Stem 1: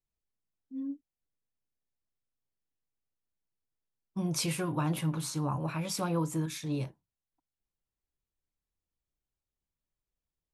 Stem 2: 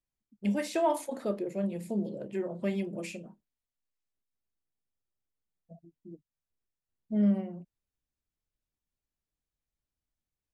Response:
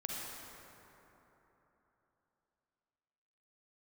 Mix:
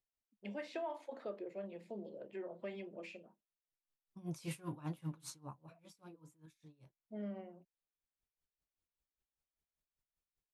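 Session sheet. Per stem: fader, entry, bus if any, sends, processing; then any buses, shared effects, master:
−1.5 dB, 0.00 s, no send, tremolo with a sine in dB 5.1 Hz, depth 24 dB; automatic ducking −19 dB, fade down 0.60 s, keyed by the second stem
−7.5 dB, 0.00 s, no send, de-essing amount 90%; three-way crossover with the lows and the highs turned down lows −14 dB, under 340 Hz, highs −23 dB, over 4,500 Hz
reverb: not used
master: downward compressor 6 to 1, threshold −38 dBFS, peak gain reduction 9.5 dB

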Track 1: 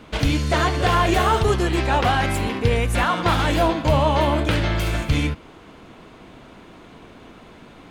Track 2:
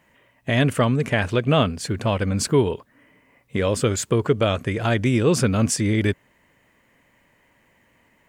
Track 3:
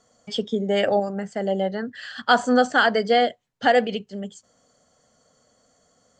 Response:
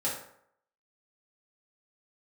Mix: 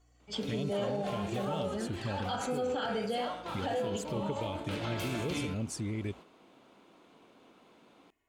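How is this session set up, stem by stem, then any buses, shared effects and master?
−8.5 dB, 0.20 s, no bus, send −21.5 dB, high-pass filter 240 Hz 12 dB per octave; automatic ducking −14 dB, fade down 0.40 s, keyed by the third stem
−8.0 dB, 0.00 s, bus A, no send, no processing
−4.5 dB, 0.00 s, bus A, send −17 dB, mains hum 60 Hz, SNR 31 dB
bus A: 0.0 dB, flanger swept by the level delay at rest 2.8 ms, full sweep at −22.5 dBFS; downward compressor 3 to 1, threshold −34 dBFS, peak gain reduction 13 dB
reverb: on, RT60 0.70 s, pre-delay 3 ms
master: noise gate −47 dBFS, range −6 dB; parametric band 1,800 Hz −6 dB 0.51 octaves; brickwall limiter −25 dBFS, peak gain reduction 8.5 dB

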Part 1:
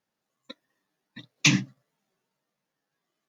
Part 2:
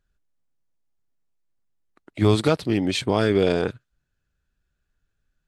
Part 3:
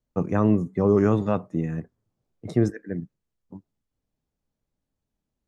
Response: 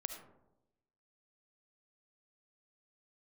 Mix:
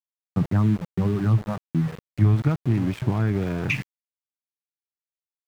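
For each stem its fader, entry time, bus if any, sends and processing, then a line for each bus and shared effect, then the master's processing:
−9.5 dB, 2.25 s, no bus, no send, graphic EQ with 15 bands 160 Hz −7 dB, 400 Hz −11 dB, 2,500 Hz +11 dB
+1.0 dB, 0.00 s, bus A, no send, no processing
+2.5 dB, 0.20 s, bus A, no send, reverb reduction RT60 1.8 s; automatic ducking −16 dB, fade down 0.20 s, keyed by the second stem
bus A: 0.0 dB, high-shelf EQ 2,400 Hz −11 dB; downward compressor 2.5 to 1, threshold −21 dBFS, peak gain reduction 7 dB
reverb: not used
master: octave-band graphic EQ 125/500/2,000/4,000/8,000 Hz +12/−11/+4/−8/−6 dB; centre clipping without the shift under −31 dBFS; high-shelf EQ 4,200 Hz −9 dB

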